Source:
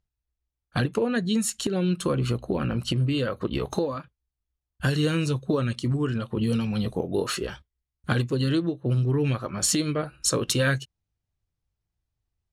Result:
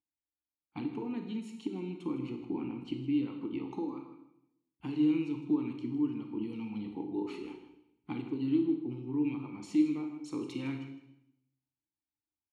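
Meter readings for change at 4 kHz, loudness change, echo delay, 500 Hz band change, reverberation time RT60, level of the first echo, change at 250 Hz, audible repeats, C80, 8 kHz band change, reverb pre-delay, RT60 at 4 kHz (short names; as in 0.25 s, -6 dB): -21.0 dB, -8.5 dB, 0.158 s, -13.5 dB, 0.80 s, -13.0 dB, -4.0 dB, 1, 8.5 dB, under -30 dB, 28 ms, 0.75 s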